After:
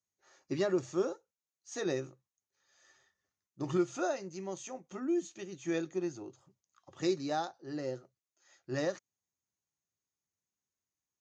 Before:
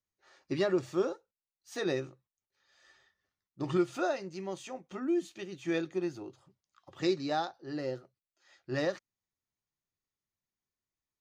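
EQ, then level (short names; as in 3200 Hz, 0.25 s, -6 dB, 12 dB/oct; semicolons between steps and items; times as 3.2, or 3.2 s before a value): HPF 66 Hz; synth low-pass 6600 Hz, resonance Q 6.5; high shelf 2600 Hz -8.5 dB; -1.5 dB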